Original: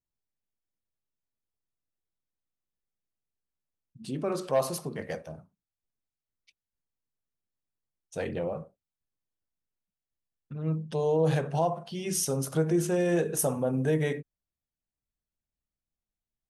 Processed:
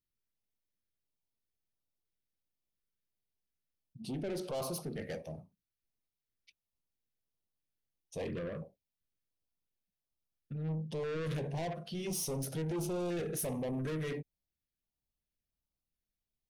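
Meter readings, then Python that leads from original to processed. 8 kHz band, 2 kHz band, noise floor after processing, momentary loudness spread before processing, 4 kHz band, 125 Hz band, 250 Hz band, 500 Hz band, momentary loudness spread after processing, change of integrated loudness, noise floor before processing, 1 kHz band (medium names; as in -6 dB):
-8.5 dB, -8.0 dB, under -85 dBFS, 13 LU, -4.5 dB, -7.5 dB, -7.5 dB, -10.0 dB, 11 LU, -9.0 dB, under -85 dBFS, -11.0 dB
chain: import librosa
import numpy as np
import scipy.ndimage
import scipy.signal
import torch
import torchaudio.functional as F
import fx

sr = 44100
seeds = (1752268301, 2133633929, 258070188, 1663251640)

y = fx.peak_eq(x, sr, hz=7500.0, db=-13.0, octaves=0.28)
y = 10.0 ** (-33.0 / 20.0) * np.tanh(y / 10.0 ** (-33.0 / 20.0))
y = fx.filter_held_notch(y, sr, hz=2.9, low_hz=810.0, high_hz=1800.0)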